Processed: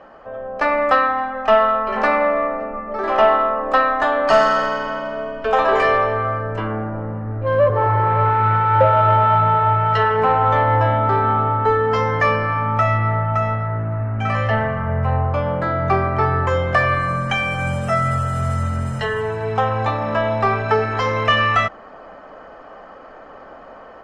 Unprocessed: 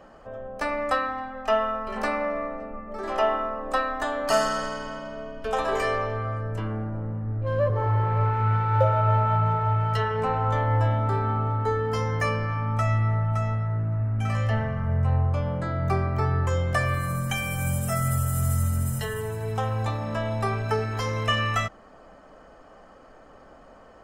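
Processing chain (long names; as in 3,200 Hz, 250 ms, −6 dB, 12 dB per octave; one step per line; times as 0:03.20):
automatic gain control gain up to 4.5 dB
mid-hump overdrive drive 13 dB, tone 2,000 Hz, clips at −4.5 dBFS
high-frequency loss of the air 100 metres
level +2 dB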